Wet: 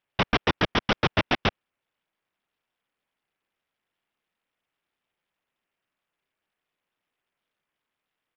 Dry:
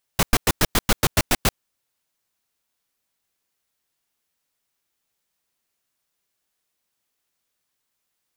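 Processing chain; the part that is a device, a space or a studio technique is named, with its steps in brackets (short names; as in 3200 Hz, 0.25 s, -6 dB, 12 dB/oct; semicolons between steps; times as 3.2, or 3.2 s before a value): Bluetooth headset (HPF 120 Hz 6 dB/oct; downsampling 8000 Hz; SBC 64 kbps 44100 Hz)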